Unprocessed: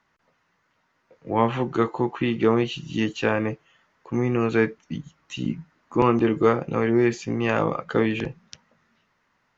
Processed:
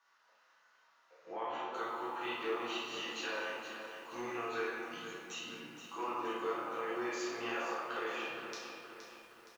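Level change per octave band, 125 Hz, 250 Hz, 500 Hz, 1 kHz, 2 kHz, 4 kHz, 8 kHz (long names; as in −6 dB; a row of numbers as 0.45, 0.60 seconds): −33.5 dB, −21.5 dB, −16.5 dB, −11.0 dB, −9.5 dB, −6.0 dB, can't be measured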